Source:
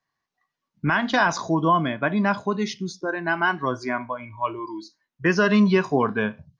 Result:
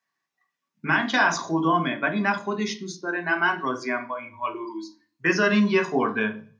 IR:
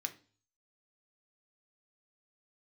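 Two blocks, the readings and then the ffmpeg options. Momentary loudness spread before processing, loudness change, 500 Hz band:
11 LU, -1.0 dB, -2.0 dB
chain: -filter_complex "[0:a]highpass=170[s0];[1:a]atrim=start_sample=2205[s1];[s0][s1]afir=irnorm=-1:irlink=0,volume=1.19"

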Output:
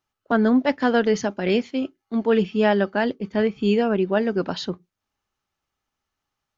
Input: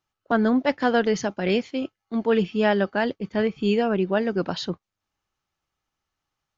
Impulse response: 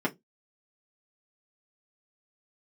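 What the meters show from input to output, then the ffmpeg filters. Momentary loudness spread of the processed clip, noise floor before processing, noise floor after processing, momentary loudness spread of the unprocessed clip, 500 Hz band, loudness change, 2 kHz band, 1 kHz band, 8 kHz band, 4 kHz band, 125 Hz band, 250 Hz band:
9 LU, -85 dBFS, -83 dBFS, 9 LU, +1.5 dB, +2.0 dB, +0.5 dB, +0.5 dB, no reading, +0.5 dB, +1.0 dB, +2.5 dB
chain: -filter_complex "[0:a]asplit=2[s0][s1];[1:a]atrim=start_sample=2205[s2];[s1][s2]afir=irnorm=-1:irlink=0,volume=0.0562[s3];[s0][s3]amix=inputs=2:normalize=0"

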